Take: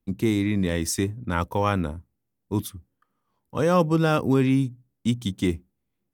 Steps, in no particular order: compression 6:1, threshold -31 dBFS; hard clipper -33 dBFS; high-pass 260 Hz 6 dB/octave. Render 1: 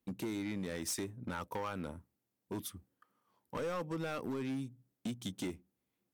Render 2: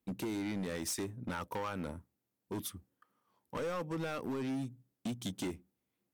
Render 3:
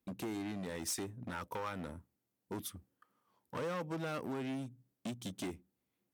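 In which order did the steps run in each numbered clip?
compression > high-pass > hard clipper; high-pass > compression > hard clipper; compression > hard clipper > high-pass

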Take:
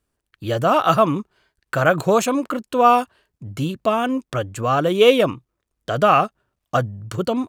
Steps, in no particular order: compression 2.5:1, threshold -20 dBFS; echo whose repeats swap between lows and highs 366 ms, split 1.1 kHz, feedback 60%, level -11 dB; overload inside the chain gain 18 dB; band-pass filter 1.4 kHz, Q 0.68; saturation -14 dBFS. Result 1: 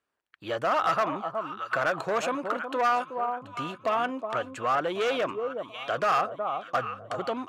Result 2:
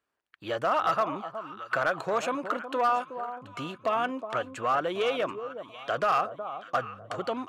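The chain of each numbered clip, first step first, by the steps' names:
echo whose repeats swap between lows and highs > saturation > compression > band-pass filter > overload inside the chain; compression > echo whose repeats swap between lows and highs > saturation > band-pass filter > overload inside the chain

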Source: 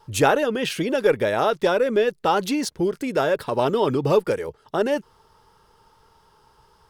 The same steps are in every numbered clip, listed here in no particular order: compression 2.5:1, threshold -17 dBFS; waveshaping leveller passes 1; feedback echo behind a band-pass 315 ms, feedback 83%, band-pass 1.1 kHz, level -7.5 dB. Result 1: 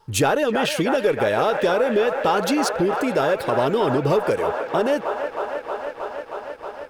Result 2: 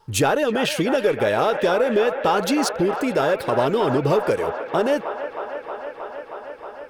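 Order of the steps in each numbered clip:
feedback echo behind a band-pass > waveshaping leveller > compression; waveshaping leveller > compression > feedback echo behind a band-pass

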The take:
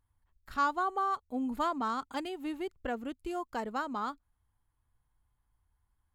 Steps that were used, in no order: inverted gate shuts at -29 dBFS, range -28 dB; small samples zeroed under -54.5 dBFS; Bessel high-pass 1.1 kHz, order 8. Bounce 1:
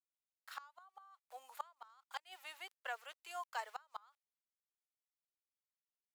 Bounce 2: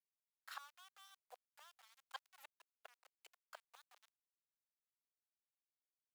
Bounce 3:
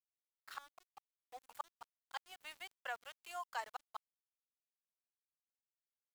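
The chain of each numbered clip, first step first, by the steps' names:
small samples zeroed > Bessel high-pass > inverted gate; inverted gate > small samples zeroed > Bessel high-pass; Bessel high-pass > inverted gate > small samples zeroed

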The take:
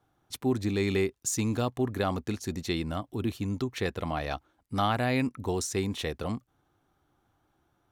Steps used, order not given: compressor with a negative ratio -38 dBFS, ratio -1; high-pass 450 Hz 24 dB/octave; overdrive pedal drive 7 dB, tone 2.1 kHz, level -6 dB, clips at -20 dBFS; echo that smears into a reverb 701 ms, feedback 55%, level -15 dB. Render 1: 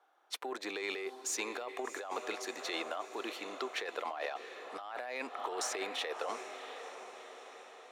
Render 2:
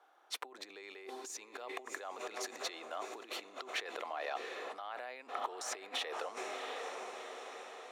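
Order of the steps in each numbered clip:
echo that smears into a reverb > overdrive pedal > high-pass > compressor with a negative ratio; echo that smears into a reverb > compressor with a negative ratio > overdrive pedal > high-pass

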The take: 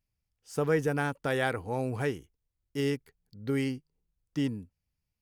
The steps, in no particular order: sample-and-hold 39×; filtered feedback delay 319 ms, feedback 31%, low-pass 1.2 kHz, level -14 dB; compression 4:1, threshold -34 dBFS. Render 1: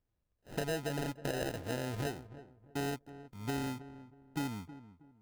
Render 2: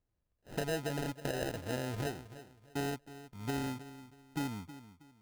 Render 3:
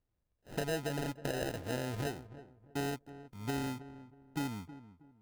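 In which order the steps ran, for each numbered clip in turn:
sample-and-hold > compression > filtered feedback delay; compression > filtered feedback delay > sample-and-hold; compression > sample-and-hold > filtered feedback delay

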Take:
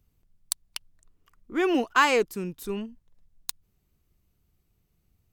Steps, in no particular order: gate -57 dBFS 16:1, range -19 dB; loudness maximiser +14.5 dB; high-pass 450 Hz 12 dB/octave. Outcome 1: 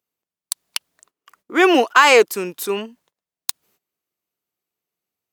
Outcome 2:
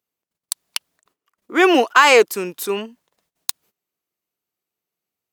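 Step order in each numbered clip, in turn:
high-pass > loudness maximiser > gate; gate > high-pass > loudness maximiser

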